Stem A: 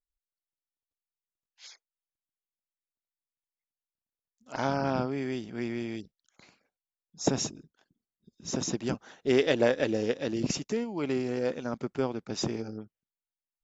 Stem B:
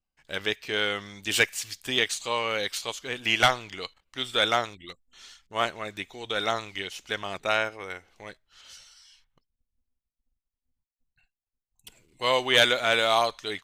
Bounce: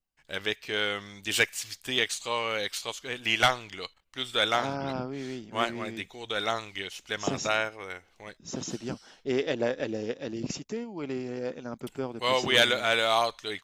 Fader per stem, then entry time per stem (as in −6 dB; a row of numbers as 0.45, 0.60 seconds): −4.0, −2.0 decibels; 0.00, 0.00 seconds